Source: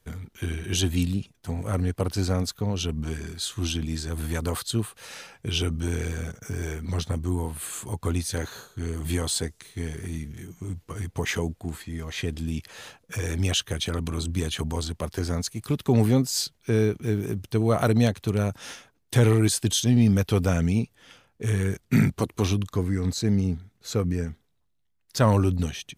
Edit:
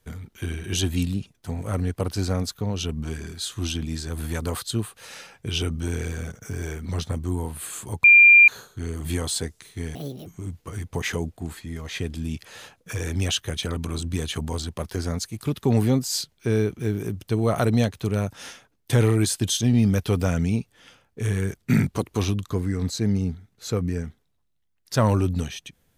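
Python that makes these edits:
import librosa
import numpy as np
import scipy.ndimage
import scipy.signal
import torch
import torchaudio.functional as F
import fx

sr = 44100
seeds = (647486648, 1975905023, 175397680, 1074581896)

y = fx.edit(x, sr, fx.bleep(start_s=8.04, length_s=0.44, hz=2390.0, db=-8.0),
    fx.speed_span(start_s=9.95, length_s=0.54, speed=1.74), tone=tone)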